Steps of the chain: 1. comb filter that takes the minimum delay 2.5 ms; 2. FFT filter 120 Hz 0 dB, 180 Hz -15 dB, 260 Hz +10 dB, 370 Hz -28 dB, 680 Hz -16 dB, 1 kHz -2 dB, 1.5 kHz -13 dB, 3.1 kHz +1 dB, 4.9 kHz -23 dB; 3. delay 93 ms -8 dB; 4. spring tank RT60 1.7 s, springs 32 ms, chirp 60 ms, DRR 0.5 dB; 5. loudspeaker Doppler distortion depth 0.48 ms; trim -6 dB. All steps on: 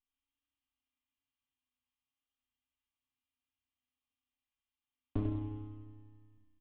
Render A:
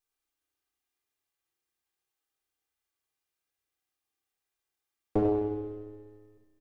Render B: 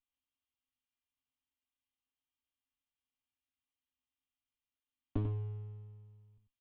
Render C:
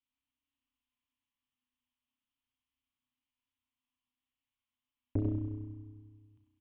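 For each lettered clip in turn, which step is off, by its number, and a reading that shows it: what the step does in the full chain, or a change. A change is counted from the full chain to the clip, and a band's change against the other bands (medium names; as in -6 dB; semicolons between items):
2, crest factor change -3.0 dB; 4, 250 Hz band -4.5 dB; 1, 1 kHz band -9.0 dB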